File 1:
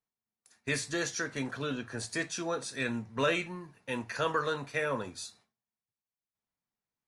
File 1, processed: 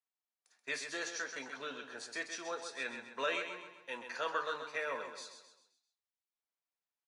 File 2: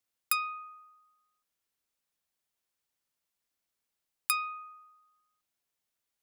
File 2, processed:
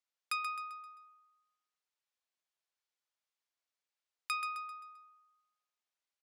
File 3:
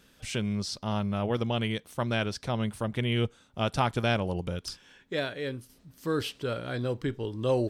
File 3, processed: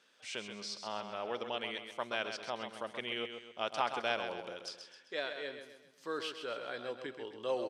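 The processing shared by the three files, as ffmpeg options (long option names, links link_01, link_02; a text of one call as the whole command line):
ffmpeg -i in.wav -filter_complex "[0:a]highpass=510,lowpass=6500,asplit=2[link_01][link_02];[link_02]aecho=0:1:131|262|393|524|655:0.398|0.171|0.0736|0.0317|0.0136[link_03];[link_01][link_03]amix=inputs=2:normalize=0,volume=-5dB" out.wav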